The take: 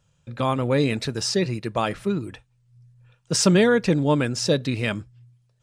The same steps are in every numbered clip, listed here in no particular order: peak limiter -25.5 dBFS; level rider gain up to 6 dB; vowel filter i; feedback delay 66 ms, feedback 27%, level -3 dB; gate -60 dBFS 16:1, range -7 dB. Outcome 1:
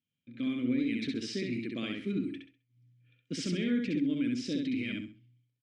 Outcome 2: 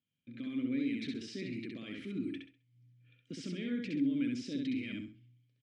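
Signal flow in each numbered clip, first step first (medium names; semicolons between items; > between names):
gate > level rider > vowel filter > peak limiter > feedback delay; peak limiter > feedback delay > level rider > gate > vowel filter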